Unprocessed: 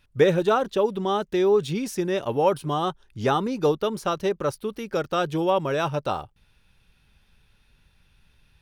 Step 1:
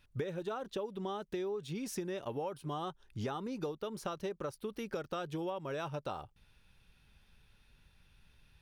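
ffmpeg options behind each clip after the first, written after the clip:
-af "acompressor=threshold=-31dB:ratio=12,volume=-4dB"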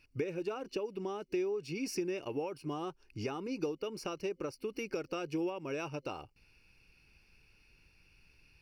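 -af "superequalizer=6b=2.51:7b=1.78:12b=3.16:13b=0.447:14b=2.82,volume=-2.5dB"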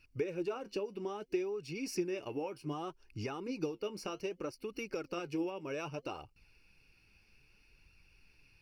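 -af "flanger=delay=0.7:depth=9.4:regen=58:speed=0.63:shape=sinusoidal,volume=3dB"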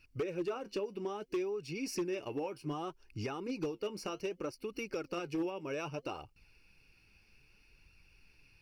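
-af "volume=30.5dB,asoftclip=hard,volume=-30.5dB,volume=1dB"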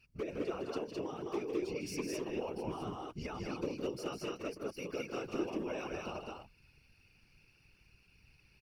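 -af "aecho=1:1:157.4|209.9:0.398|0.794,afftfilt=real='hypot(re,im)*cos(2*PI*random(0))':imag='hypot(re,im)*sin(2*PI*random(1))':win_size=512:overlap=0.75,volume=2.5dB"

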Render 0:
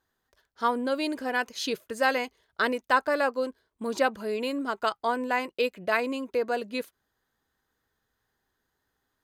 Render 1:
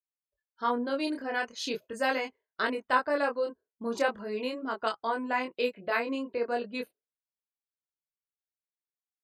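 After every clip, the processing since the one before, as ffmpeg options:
-af "afftdn=nr=33:nf=-50,flanger=delay=22.5:depth=3.3:speed=0.4"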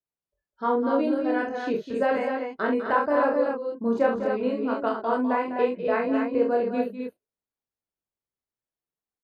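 -filter_complex "[0:a]acrossover=split=3000[a][b];[b]acompressor=threshold=-48dB:ratio=4:attack=1:release=60[c];[a][c]amix=inputs=2:normalize=0,tiltshelf=f=1.3k:g=8,aecho=1:1:43.73|201.2|256.6:0.562|0.316|0.562"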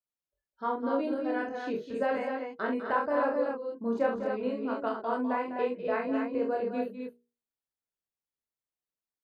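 -af "bandreject=f=60:t=h:w=6,bandreject=f=120:t=h:w=6,bandreject=f=180:t=h:w=6,bandreject=f=240:t=h:w=6,bandreject=f=300:t=h:w=6,bandreject=f=360:t=h:w=6,bandreject=f=420:t=h:w=6,bandreject=f=480:t=h:w=6,volume=-5.5dB"

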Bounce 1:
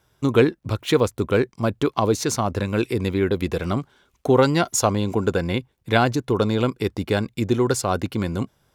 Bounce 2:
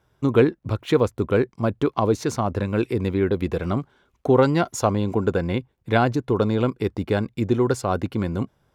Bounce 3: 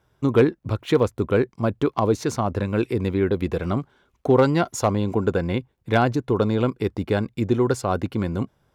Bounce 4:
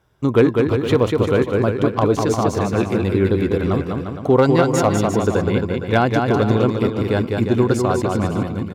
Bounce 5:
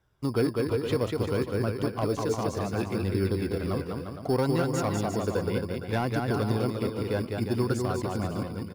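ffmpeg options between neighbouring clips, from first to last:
-af "highshelf=f=2.9k:g=-10.5"
-af "volume=8.5dB,asoftclip=hard,volume=-8.5dB"
-af "aecho=1:1:200|350|462.5|546.9|610.2:0.631|0.398|0.251|0.158|0.1,volume=2.5dB"
-filter_complex "[0:a]acrossover=split=390[a][b];[a]acrusher=samples=9:mix=1:aa=0.000001[c];[b]asoftclip=type=tanh:threshold=-14dB[d];[c][d]amix=inputs=2:normalize=0,flanger=delay=0.5:depth=1.7:regen=69:speed=0.64:shape=triangular,volume=-5dB"

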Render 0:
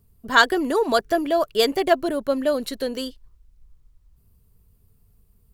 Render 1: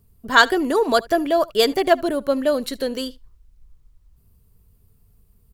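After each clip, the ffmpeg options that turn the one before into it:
-af "aecho=1:1:74:0.0668,volume=2dB"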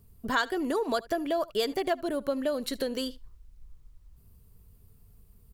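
-af "acompressor=threshold=-29dB:ratio=3"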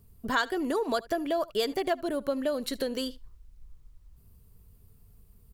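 -af anull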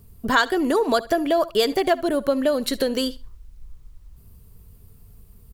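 -af "aecho=1:1:65|130:0.0708|0.0262,volume=8.5dB"

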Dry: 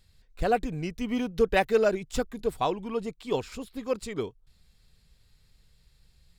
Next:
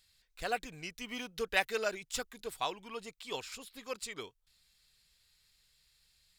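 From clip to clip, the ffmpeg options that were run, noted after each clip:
-af "tiltshelf=f=820:g=-10,volume=-8.5dB"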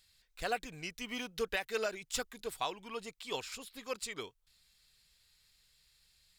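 -af "alimiter=limit=-23dB:level=0:latency=1:release=217,volume=1dB"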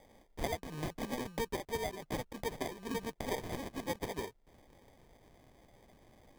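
-af "acompressor=threshold=-41dB:ratio=12,acrusher=samples=32:mix=1:aa=0.000001,volume=8dB"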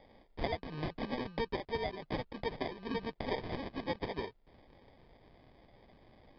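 -af "aresample=11025,aresample=44100,volume=1dB"

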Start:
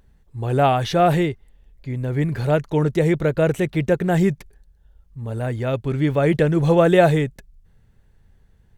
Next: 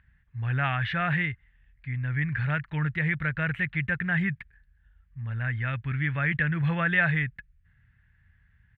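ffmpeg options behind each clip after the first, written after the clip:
-filter_complex "[0:a]firequalizer=gain_entry='entry(110,0);entry(380,-23);entry(1700,11);entry(5800,-30)':delay=0.05:min_phase=1,asplit=2[a][b];[b]alimiter=limit=-16dB:level=0:latency=1:release=86,volume=-2dB[c];[a][c]amix=inputs=2:normalize=0,highpass=54,volume=-7.5dB"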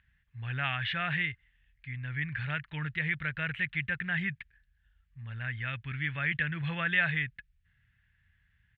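-af "equalizer=f=3.2k:w=1:g=12,volume=-8.5dB"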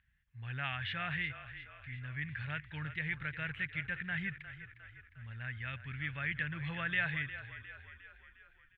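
-filter_complex "[0:a]asplit=7[a][b][c][d][e][f][g];[b]adelay=356,afreqshift=-31,volume=-12.5dB[h];[c]adelay=712,afreqshift=-62,volume=-17.9dB[i];[d]adelay=1068,afreqshift=-93,volume=-23.2dB[j];[e]adelay=1424,afreqshift=-124,volume=-28.6dB[k];[f]adelay=1780,afreqshift=-155,volume=-33.9dB[l];[g]adelay=2136,afreqshift=-186,volume=-39.3dB[m];[a][h][i][j][k][l][m]amix=inputs=7:normalize=0,volume=-6dB"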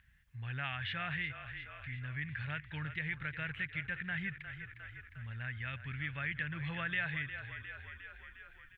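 -af "acompressor=threshold=-59dB:ratio=1.5,volume=8dB"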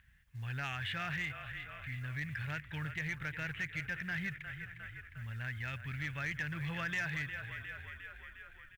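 -af "aecho=1:1:576:0.0794,acrusher=bits=7:mode=log:mix=0:aa=0.000001,asoftclip=type=tanh:threshold=-30.5dB,volume=1.5dB"

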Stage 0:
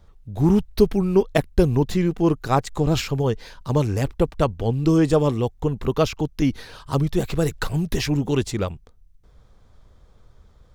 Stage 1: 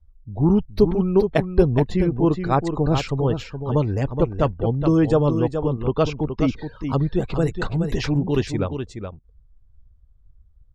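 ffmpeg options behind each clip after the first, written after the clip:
-af "afftdn=nr=25:nf=-39,lowpass=f=3.8k:p=1,aecho=1:1:421:0.422"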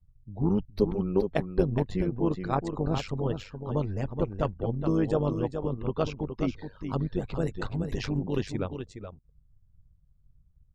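-af "tremolo=f=99:d=0.667,volume=-5.5dB"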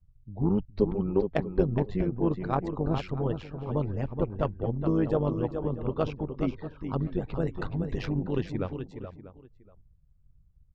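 -filter_complex "[0:a]adynamicsmooth=sensitivity=1:basefreq=3.6k,asplit=2[a][b];[b]adelay=641.4,volume=-16dB,highshelf=f=4k:g=-14.4[c];[a][c]amix=inputs=2:normalize=0"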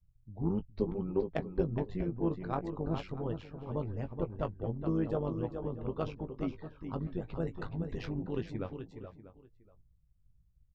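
-filter_complex "[0:a]asplit=2[a][b];[b]adelay=18,volume=-10dB[c];[a][c]amix=inputs=2:normalize=0,volume=-7dB"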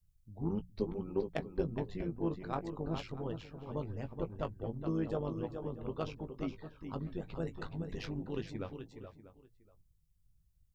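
-af "highshelf=f=3.3k:g=10.5,bandreject=f=60:t=h:w=6,bandreject=f=120:t=h:w=6,bandreject=f=180:t=h:w=6,volume=-3dB"

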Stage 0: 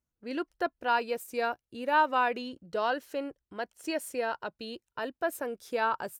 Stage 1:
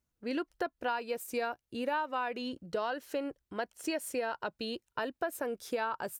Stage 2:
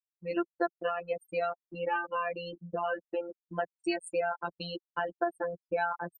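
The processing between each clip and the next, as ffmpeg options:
-af "acompressor=threshold=-34dB:ratio=6,volume=3.5dB"
-af "afftfilt=real='re*gte(hypot(re,im),0.0178)':imag='im*gte(hypot(re,im),0.0178)':win_size=1024:overlap=0.75,anlmdn=0.0631,afftfilt=real='hypot(re,im)*cos(PI*b)':imag='0':win_size=1024:overlap=0.75,volume=6dB"

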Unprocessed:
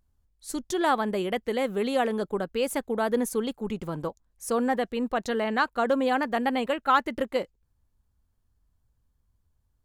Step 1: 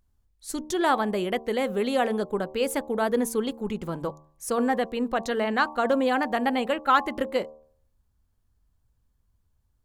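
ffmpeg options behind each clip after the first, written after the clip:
-af "bandreject=f=76.24:t=h:w=4,bandreject=f=152.48:t=h:w=4,bandreject=f=228.72:t=h:w=4,bandreject=f=304.96:t=h:w=4,bandreject=f=381.2:t=h:w=4,bandreject=f=457.44:t=h:w=4,bandreject=f=533.68:t=h:w=4,bandreject=f=609.92:t=h:w=4,bandreject=f=686.16:t=h:w=4,bandreject=f=762.4:t=h:w=4,bandreject=f=838.64:t=h:w=4,bandreject=f=914.88:t=h:w=4,bandreject=f=991.12:t=h:w=4,bandreject=f=1.06736k:t=h:w=4,bandreject=f=1.1436k:t=h:w=4,volume=1.5dB"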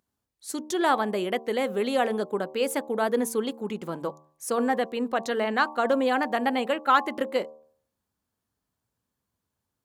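-af "highpass=200"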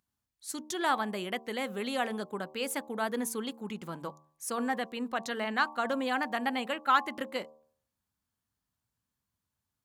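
-af "equalizer=f=450:t=o:w=1.5:g=-8.5,volume=-2.5dB"

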